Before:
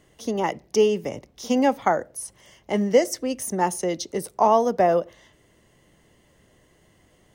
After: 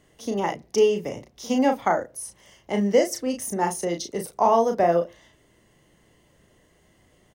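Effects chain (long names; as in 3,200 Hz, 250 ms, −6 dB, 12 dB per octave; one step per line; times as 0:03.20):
double-tracking delay 35 ms −5.5 dB
level −2 dB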